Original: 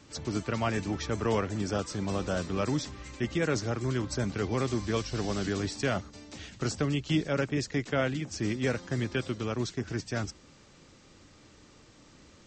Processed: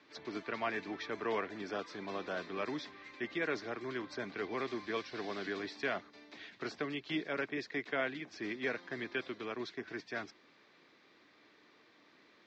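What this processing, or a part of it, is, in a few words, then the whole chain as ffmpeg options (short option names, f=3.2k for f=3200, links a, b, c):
phone earpiece: -af "highpass=500,equalizer=f=540:t=q:w=4:g=-9,equalizer=f=840:t=q:w=4:g=-7,equalizer=f=1.3k:t=q:w=4:g=-7,equalizer=f=2.9k:t=q:w=4:g=-9,lowpass=f=3.6k:w=0.5412,lowpass=f=3.6k:w=1.3066,volume=1dB"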